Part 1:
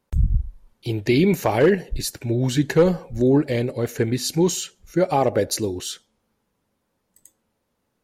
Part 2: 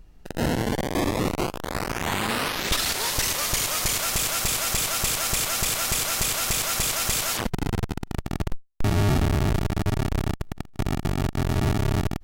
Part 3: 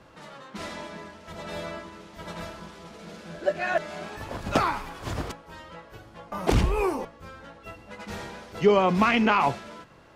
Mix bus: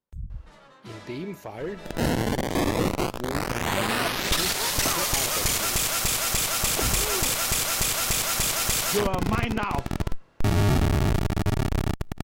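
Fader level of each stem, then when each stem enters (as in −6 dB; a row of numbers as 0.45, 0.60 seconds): −17.0, 0.0, −7.5 decibels; 0.00, 1.60, 0.30 seconds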